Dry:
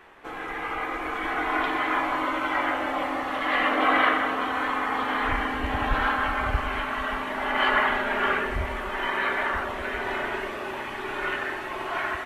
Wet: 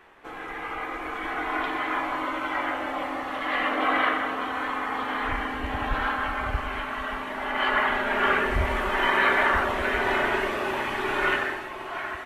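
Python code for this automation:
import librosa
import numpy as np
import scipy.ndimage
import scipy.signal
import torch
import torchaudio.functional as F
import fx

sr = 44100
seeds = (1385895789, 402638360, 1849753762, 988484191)

y = fx.gain(x, sr, db=fx.line((7.61, -2.5), (8.77, 5.0), (11.33, 5.0), (11.73, -4.0)))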